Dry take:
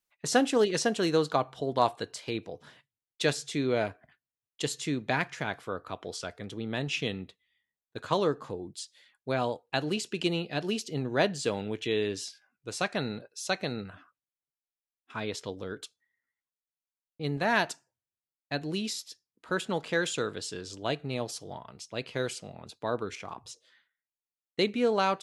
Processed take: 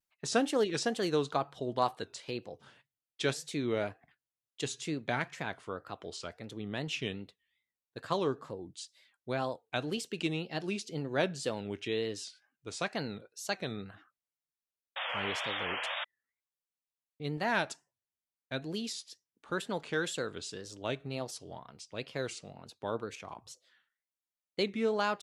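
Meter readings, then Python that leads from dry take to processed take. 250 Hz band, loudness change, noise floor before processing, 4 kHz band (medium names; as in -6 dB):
-4.5 dB, -4.5 dB, under -85 dBFS, -3.5 dB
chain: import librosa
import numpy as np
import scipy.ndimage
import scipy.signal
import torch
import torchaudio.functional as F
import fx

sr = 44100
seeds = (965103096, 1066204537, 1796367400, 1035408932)

y = fx.spec_paint(x, sr, seeds[0], shape='noise', start_s=14.96, length_s=1.09, low_hz=490.0, high_hz=3500.0, level_db=-32.0)
y = fx.wow_flutter(y, sr, seeds[1], rate_hz=2.1, depth_cents=140.0)
y = y * librosa.db_to_amplitude(-4.5)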